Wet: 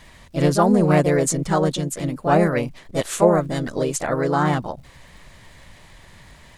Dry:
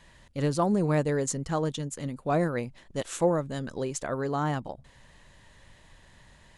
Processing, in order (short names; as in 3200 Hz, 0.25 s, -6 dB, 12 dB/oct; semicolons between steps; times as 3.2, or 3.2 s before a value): crackle 130/s -56 dBFS; harmoniser +3 st -4 dB; gain +7.5 dB